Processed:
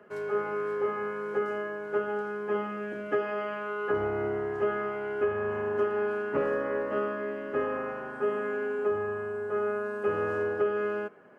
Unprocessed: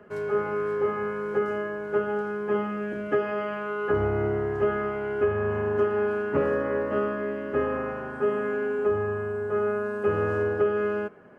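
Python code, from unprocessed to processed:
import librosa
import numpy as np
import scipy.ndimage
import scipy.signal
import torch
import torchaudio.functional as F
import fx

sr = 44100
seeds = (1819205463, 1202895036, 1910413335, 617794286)

y = fx.highpass(x, sr, hz=290.0, slope=6)
y = F.gain(torch.from_numpy(y), -2.0).numpy()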